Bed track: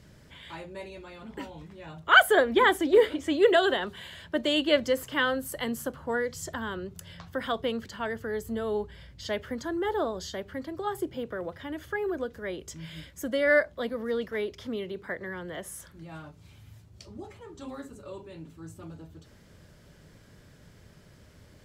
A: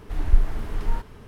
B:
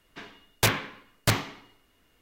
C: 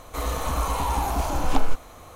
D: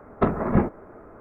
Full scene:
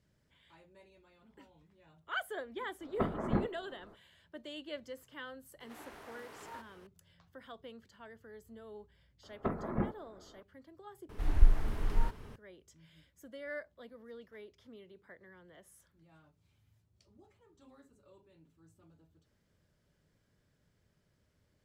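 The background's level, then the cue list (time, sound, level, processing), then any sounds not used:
bed track -20 dB
2.78 add D -11.5 dB, fades 0.05 s
5.6 add A -9 dB + HPF 460 Hz
9.23 add D -13.5 dB
11.09 replace with A -5 dB
not used: B, C

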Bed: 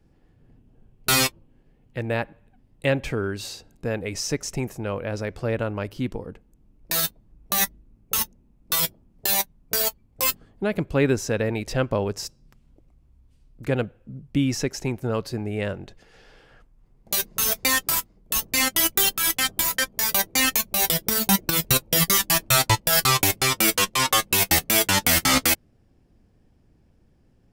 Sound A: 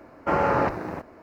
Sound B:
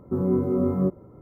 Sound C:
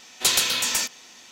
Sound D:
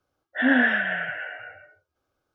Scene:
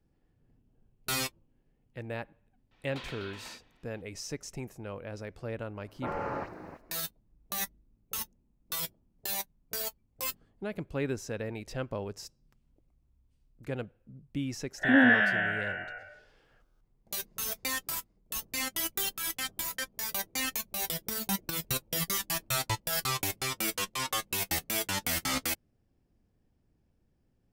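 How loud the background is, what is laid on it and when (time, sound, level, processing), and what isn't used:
bed -12 dB
2.71 add C -14 dB + air absorption 410 m
5.75 add A -13 dB + dispersion highs, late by 54 ms, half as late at 2500 Hz
14.47 add D -0.5 dB + stepped spectrum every 50 ms
not used: B

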